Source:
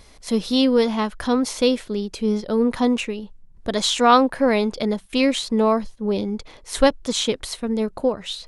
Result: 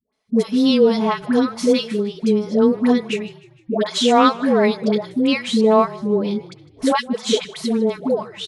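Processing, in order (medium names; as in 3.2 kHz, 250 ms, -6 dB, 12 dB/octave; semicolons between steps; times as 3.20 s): high-pass 180 Hz 12 dB/octave; gate -38 dBFS, range -23 dB; treble shelf 5.8 kHz -9 dB; comb 4.6 ms, depth 56%; phase dispersion highs, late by 128 ms, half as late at 640 Hz; on a send: frequency-shifting echo 154 ms, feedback 51%, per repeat -31 Hz, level -20.5 dB; on the sum: trim +1.5 dB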